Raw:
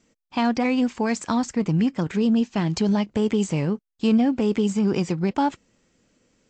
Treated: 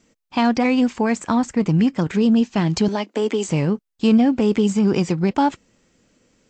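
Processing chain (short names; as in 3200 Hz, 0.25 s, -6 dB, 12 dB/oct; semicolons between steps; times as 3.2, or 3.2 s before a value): 0.94–1.57 dynamic EQ 5000 Hz, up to -8 dB, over -51 dBFS, Q 1.2; 2.88–3.48 steep high-pass 250 Hz 36 dB/oct; gain +4 dB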